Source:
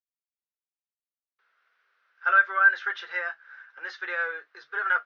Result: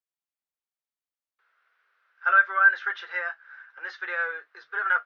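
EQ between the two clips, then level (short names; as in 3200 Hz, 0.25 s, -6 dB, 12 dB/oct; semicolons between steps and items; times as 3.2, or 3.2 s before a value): low shelf 440 Hz -10 dB; high shelf 2400 Hz -8.5 dB; +4.0 dB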